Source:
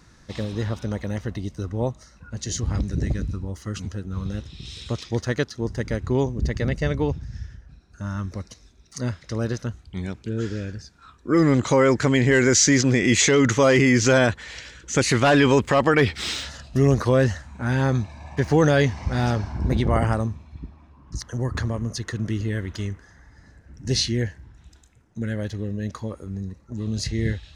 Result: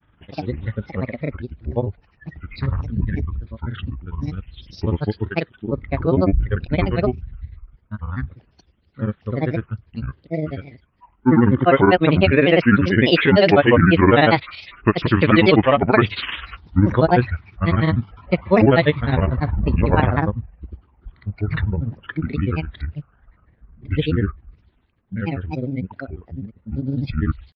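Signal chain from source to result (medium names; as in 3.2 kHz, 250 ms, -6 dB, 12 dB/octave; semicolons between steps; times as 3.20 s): resampled via 8 kHz; granulator 79 ms, grains 20 per s, pitch spread up and down by 7 st; spectral noise reduction 10 dB; trim +6 dB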